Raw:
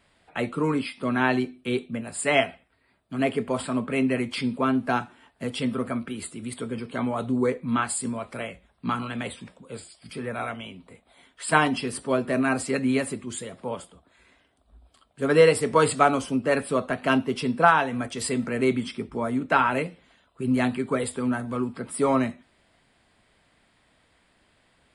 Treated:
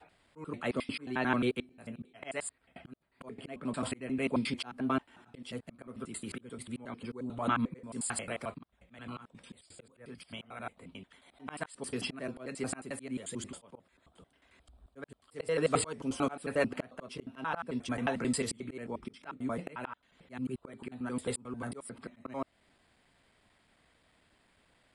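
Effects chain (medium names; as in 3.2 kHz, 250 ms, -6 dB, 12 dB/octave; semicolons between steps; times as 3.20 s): slices played last to first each 89 ms, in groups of 4; slow attack 388 ms; trim -4.5 dB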